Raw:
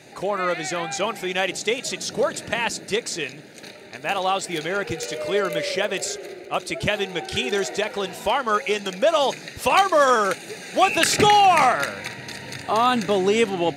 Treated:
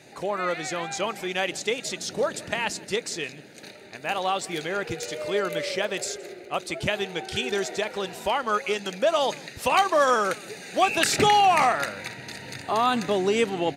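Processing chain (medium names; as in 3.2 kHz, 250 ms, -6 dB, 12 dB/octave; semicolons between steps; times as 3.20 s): delay 168 ms -23.5 dB; trim -3.5 dB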